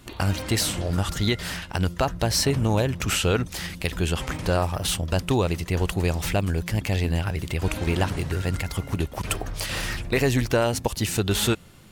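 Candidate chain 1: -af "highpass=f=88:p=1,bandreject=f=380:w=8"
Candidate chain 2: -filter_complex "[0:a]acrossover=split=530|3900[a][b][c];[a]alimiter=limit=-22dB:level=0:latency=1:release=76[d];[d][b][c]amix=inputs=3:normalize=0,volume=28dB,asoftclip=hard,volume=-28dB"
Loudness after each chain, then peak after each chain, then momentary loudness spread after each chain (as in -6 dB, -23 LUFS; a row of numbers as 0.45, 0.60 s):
-26.5, -31.5 LUFS; -9.0, -28.0 dBFS; 7, 4 LU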